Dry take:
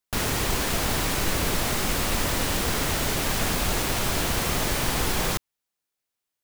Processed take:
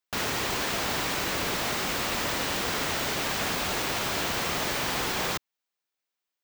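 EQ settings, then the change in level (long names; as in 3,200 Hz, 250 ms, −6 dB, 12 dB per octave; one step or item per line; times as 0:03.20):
high-pass filter 160 Hz 6 dB per octave
low-shelf EQ 500 Hz −4.5 dB
parametric band 11,000 Hz −9.5 dB 0.95 octaves
0.0 dB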